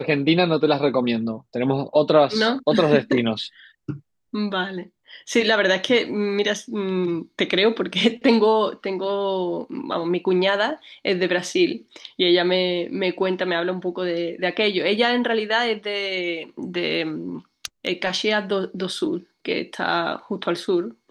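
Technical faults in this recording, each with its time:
0:17.65–0:17.88: clipping −17 dBFS

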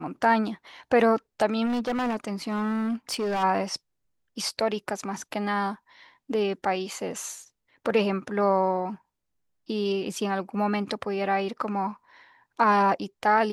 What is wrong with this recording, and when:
0:01.65–0:03.44: clipping −24 dBFS

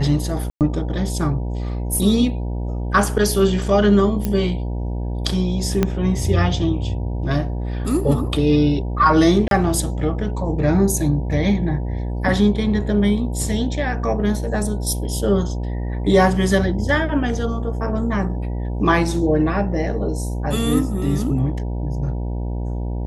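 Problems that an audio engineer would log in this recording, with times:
mains buzz 60 Hz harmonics 16 −24 dBFS
0:00.50–0:00.61: drop-out 108 ms
0:04.25: click −9 dBFS
0:05.83: click −5 dBFS
0:09.48–0:09.51: drop-out 32 ms

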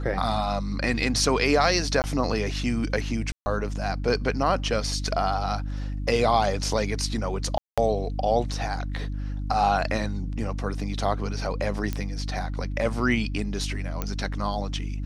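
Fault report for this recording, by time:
mains hum 50 Hz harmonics 6 −30 dBFS
0:02.02–0:02.04: drop-out 19 ms
0:03.32–0:03.46: drop-out 140 ms
0:07.58–0:07.78: drop-out 196 ms
0:11.93: click −15 dBFS
0:14.02: click −13 dBFS

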